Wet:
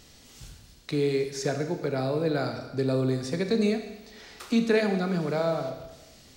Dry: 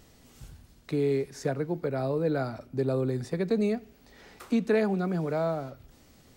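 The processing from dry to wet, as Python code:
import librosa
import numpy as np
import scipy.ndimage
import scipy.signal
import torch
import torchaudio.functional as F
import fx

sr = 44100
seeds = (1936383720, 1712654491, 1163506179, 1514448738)

y = fx.peak_eq(x, sr, hz=4600.0, db=9.5, octaves=2.1)
y = fx.rev_schroeder(y, sr, rt60_s=1.1, comb_ms=27, drr_db=6.0)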